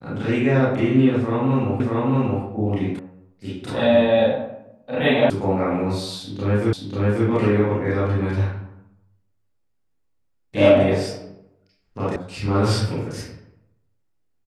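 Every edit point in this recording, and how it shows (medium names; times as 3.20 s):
1.80 s: repeat of the last 0.63 s
2.99 s: sound stops dead
5.30 s: sound stops dead
6.73 s: repeat of the last 0.54 s
12.16 s: sound stops dead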